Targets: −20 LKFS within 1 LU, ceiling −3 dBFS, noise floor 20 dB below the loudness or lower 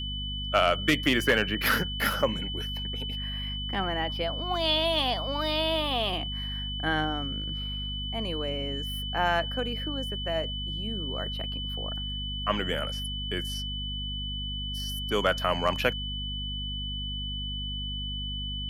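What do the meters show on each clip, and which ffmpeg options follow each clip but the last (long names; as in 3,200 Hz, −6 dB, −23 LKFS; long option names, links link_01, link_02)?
mains hum 50 Hz; hum harmonics up to 250 Hz; level of the hum −33 dBFS; interfering tone 3,000 Hz; level of the tone −34 dBFS; integrated loudness −29.0 LKFS; sample peak −9.0 dBFS; target loudness −20.0 LKFS
→ -af "bandreject=frequency=50:width_type=h:width=4,bandreject=frequency=100:width_type=h:width=4,bandreject=frequency=150:width_type=h:width=4,bandreject=frequency=200:width_type=h:width=4,bandreject=frequency=250:width_type=h:width=4"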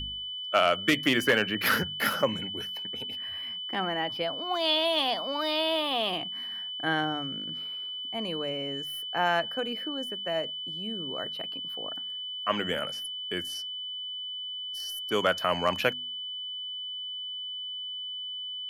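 mains hum none found; interfering tone 3,000 Hz; level of the tone −34 dBFS
→ -af "bandreject=frequency=3000:width=30"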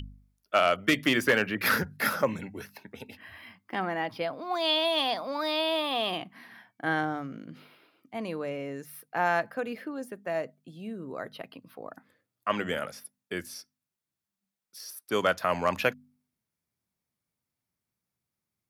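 interfering tone none found; integrated loudness −29.0 LKFS; sample peak −9.5 dBFS; target loudness −20.0 LKFS
→ -af "volume=9dB,alimiter=limit=-3dB:level=0:latency=1"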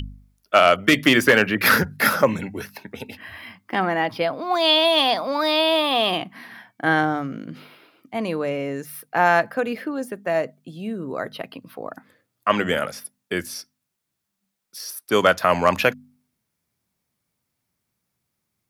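integrated loudness −20.5 LKFS; sample peak −3.0 dBFS; background noise floor −79 dBFS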